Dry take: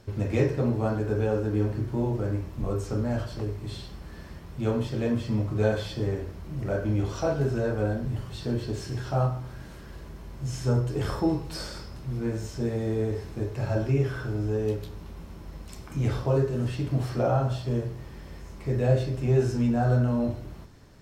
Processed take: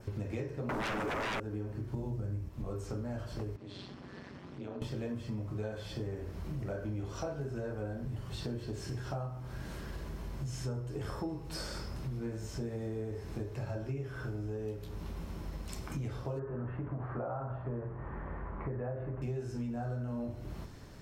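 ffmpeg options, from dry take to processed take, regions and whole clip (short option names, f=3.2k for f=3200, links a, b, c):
-filter_complex "[0:a]asettb=1/sr,asplit=3[a][b][c];[a]atrim=end=0.694[d];[b]atrim=start=0.69:end=1.4,asetpts=PTS-STARTPTS,afade=t=in:d=0.004:c=qsin,afade=t=out:st=0.706:d=0.004:c=qsin,highpass=f=160:w=0.5412,highpass=f=160:w=1.3066,aeval=exprs='0.15*sin(PI/2*6.31*val(0)/0.15)':c=same[e];[c]atrim=start=1.396[f];[d][e]acrossfade=d=0.004:c1=hsin:c2=qsin[g];[g][f]acrossfade=d=0.004:c1=qsin:c2=hsin,asettb=1/sr,asplit=3[h][i][j];[h]atrim=end=1.944[k];[i]atrim=start=1.94:end=2.49,asetpts=PTS-STARTPTS,afade=t=in:d=0.004:c=qsin,afade=t=out:st=0.546:d=0.004:c=qsin,bass=f=250:g=10,treble=f=4k:g=5,bandreject=f=60:t=h:w=6,bandreject=f=120:t=h:w=6,bandreject=f=180:t=h:w=6,bandreject=f=240:t=h:w=6,bandreject=f=300:t=h:w=6,bandreject=f=360:t=h:w=6,bandreject=f=420:t=h:w=6[l];[j]atrim=start=2.486[m];[k][l]acrossfade=d=0.004:c1=hsin:c2=qsin[n];[n][m]acrossfade=d=0.004:c1=qsin:c2=hsin,asettb=1/sr,asplit=3[o][p][q];[o]atrim=end=3.564[r];[p]atrim=start=3.56:end=4.82,asetpts=PTS-STARTPTS,afade=t=in:d=0.004:c=qsin,afade=t=out:st=1.256:d=0.004:c=qsin,acompressor=threshold=-37dB:ratio=4:attack=3.2:release=140:knee=1:detection=peak,tremolo=f=190:d=0.919,highpass=140,lowpass=4.8k[s];[q]atrim=start=4.816[t];[r][s]acrossfade=d=0.004:c1=hsin:c2=qsin[u];[u][t]acrossfade=d=0.004:c1=qsin:c2=hsin,asettb=1/sr,asplit=3[v][w][x];[v]atrim=end=16.394[y];[w]atrim=start=16.39:end=19.22,asetpts=PTS-STARTPTS,afade=t=in:d=0.004:c=qsin,afade=t=out:st=2.826:d=0.004:c=qsin,lowpass=f=1.8k:w=0.5412,lowpass=f=1.8k:w=1.3066,equalizer=f=1.1k:t=o:w=1.6:g=8.5,acompressor=threshold=-24dB:ratio=2:attack=3.2:release=140:knee=1:detection=peak[z];[x]atrim=start=19.216[aa];[y][z]acrossfade=d=0.004:c1=hsin:c2=qsin[ab];[ab][aa]acrossfade=d=0.004:c1=qsin:c2=hsin,adynamicequalizer=threshold=0.00158:dfrequency=4000:dqfactor=1.8:tfrequency=4000:tqfactor=1.8:attack=5:release=100:ratio=0.375:range=2:mode=cutabove:tftype=bell,acompressor=threshold=-38dB:ratio=6,volume=2dB"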